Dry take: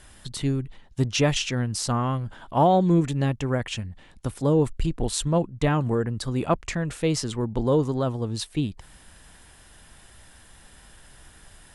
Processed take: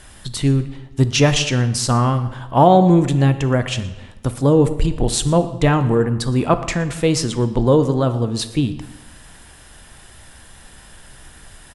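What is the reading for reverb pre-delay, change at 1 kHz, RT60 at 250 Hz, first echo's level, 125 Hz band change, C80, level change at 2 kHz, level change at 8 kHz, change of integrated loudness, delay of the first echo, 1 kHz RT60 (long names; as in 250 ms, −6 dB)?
7 ms, +7.5 dB, 1.1 s, −20.5 dB, +8.0 dB, 14.0 dB, +7.5 dB, +7.5 dB, +7.5 dB, 118 ms, 1.2 s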